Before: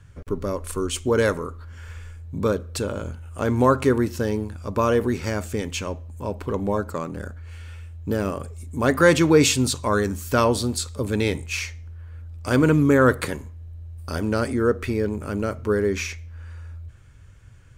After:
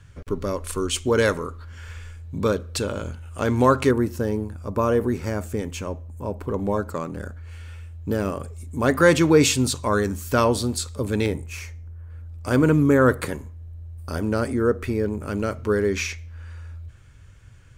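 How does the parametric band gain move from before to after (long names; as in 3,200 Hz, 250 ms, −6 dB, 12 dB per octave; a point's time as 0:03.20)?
parametric band 3,700 Hz 2.2 octaves
+4 dB
from 0:03.91 −7.5 dB
from 0:06.59 −1 dB
from 0:11.26 −12 dB
from 0:12.10 −4 dB
from 0:15.28 +2.5 dB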